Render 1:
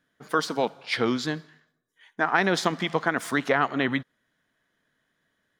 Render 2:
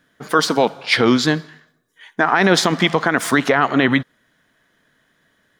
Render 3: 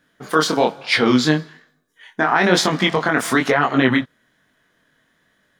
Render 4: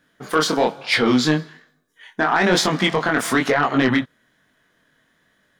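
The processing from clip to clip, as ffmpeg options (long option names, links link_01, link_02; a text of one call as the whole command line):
ffmpeg -i in.wav -af "alimiter=level_in=14dB:limit=-1dB:release=50:level=0:latency=1,volume=-2dB" out.wav
ffmpeg -i in.wav -af "flanger=delay=20:depth=6.1:speed=1.1,volume=2dB" out.wav
ffmpeg -i in.wav -af "asoftclip=type=tanh:threshold=-8dB" out.wav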